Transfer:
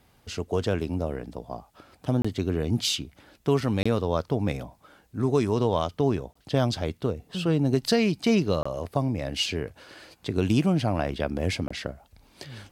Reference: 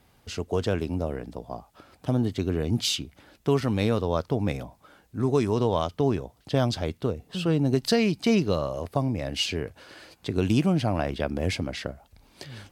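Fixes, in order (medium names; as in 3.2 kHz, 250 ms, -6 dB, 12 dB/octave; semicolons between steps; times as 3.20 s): interpolate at 2.22/3.83/6.33/8.63/11.68 s, 25 ms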